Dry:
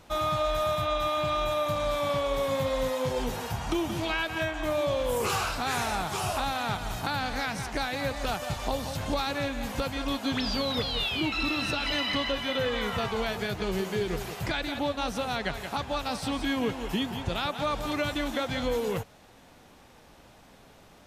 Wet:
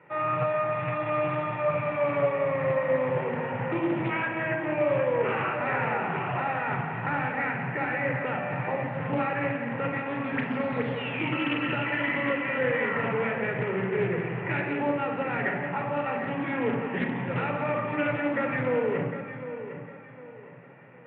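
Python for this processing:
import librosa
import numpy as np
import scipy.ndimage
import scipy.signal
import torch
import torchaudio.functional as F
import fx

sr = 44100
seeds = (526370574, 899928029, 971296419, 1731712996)

p1 = scipy.signal.sosfilt(scipy.signal.cheby1(5, 1.0, [120.0, 2600.0], 'bandpass', fs=sr, output='sos'), x)
p2 = fx.peak_eq(p1, sr, hz=1900.0, db=9.0, octaves=0.23)
p3 = p2 + fx.echo_feedback(p2, sr, ms=755, feedback_pct=33, wet_db=-11.0, dry=0)
p4 = fx.room_shoebox(p3, sr, seeds[0], volume_m3=3700.0, walls='furnished', distance_m=4.5)
p5 = fx.doppler_dist(p4, sr, depth_ms=0.19)
y = p5 * librosa.db_to_amplitude(-2.5)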